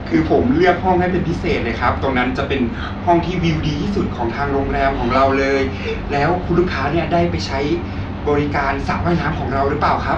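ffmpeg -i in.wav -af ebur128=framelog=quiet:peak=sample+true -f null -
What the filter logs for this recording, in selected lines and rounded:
Integrated loudness:
  I:         -17.9 LUFS
  Threshold: -27.9 LUFS
Loudness range:
  LRA:         1.4 LU
  Threshold: -38.2 LUFS
  LRA low:   -18.8 LUFS
  LRA high:  -17.4 LUFS
Sample peak:
  Peak:       -2.9 dBFS
True peak:
  Peak:       -2.9 dBFS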